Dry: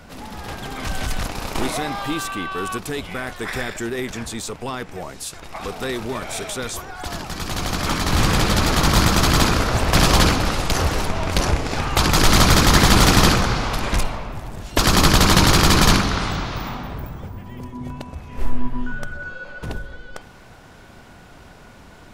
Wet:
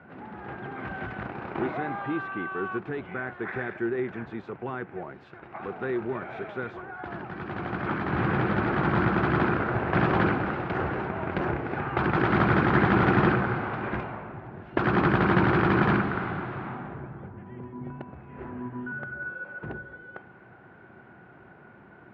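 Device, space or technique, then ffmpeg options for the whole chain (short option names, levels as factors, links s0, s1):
bass cabinet: -af "highpass=f=76:w=0.5412,highpass=f=76:w=1.3066,equalizer=f=81:t=q:w=4:g=-6,equalizer=f=130:t=q:w=4:g=5,equalizer=f=200:t=q:w=4:g=4,equalizer=f=360:t=q:w=4:g=10,equalizer=f=780:t=q:w=4:g=4,equalizer=f=1500:t=q:w=4:g=7,lowpass=f=2300:w=0.5412,lowpass=f=2300:w=1.3066,volume=0.355"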